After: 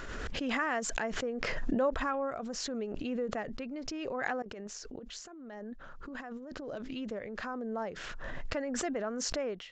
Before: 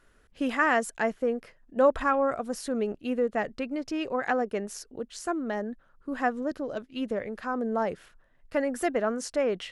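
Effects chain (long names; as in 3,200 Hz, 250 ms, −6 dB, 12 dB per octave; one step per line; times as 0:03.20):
0:04.42–0:06.76: compressor whose output falls as the input rises −36 dBFS, ratio −0.5
downsampling to 16,000 Hz
background raised ahead of every attack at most 20 dB per second
level −9 dB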